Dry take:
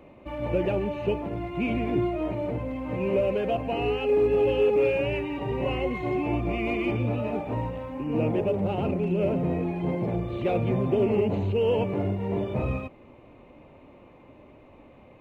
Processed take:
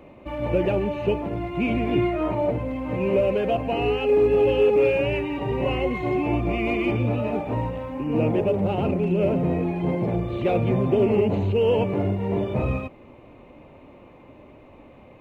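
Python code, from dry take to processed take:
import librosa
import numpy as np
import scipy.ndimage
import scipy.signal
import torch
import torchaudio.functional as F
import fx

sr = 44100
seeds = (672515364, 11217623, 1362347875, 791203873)

y = fx.peak_eq(x, sr, hz=fx.line((1.9, 3200.0), (2.5, 650.0)), db=9.0, octaves=0.71, at=(1.9, 2.5), fade=0.02)
y = y * librosa.db_to_amplitude(3.5)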